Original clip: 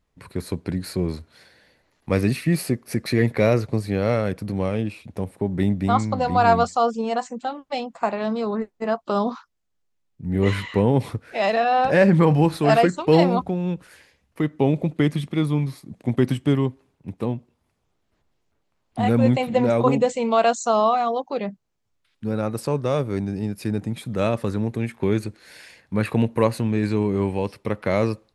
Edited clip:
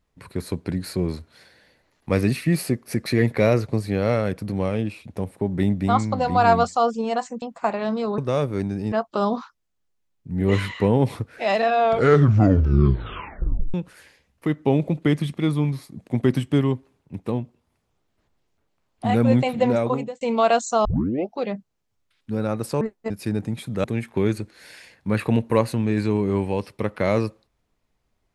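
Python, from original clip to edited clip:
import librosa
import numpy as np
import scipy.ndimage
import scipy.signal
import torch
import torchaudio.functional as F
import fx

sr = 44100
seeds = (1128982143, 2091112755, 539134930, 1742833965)

y = fx.edit(x, sr, fx.cut(start_s=7.42, length_s=0.39),
    fx.swap(start_s=8.57, length_s=0.29, other_s=22.75, other_length_s=0.74),
    fx.tape_stop(start_s=11.59, length_s=2.09),
    fx.fade_out_span(start_s=19.63, length_s=0.52),
    fx.tape_start(start_s=20.79, length_s=0.54),
    fx.cut(start_s=24.23, length_s=0.47), tone=tone)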